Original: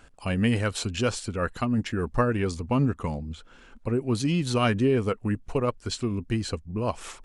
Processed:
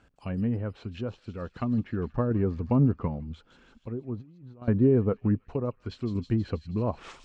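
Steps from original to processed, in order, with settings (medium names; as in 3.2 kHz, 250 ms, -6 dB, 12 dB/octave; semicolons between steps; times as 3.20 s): low-pass that closes with the level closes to 1 kHz, closed at -22 dBFS; high-pass 140 Hz 6 dB/octave; bass shelf 260 Hz +10.5 dB; 4.17–4.68 s: compressor with a negative ratio -36 dBFS, ratio -1; distance through air 74 m; feedback echo behind a high-pass 160 ms, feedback 61%, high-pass 4.2 kHz, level -4 dB; random-step tremolo 1.3 Hz, depth 70%; trim -2 dB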